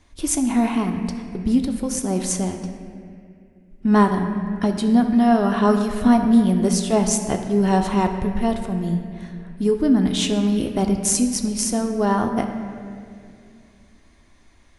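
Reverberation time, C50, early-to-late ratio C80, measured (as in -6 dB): 2.4 s, 6.5 dB, 7.5 dB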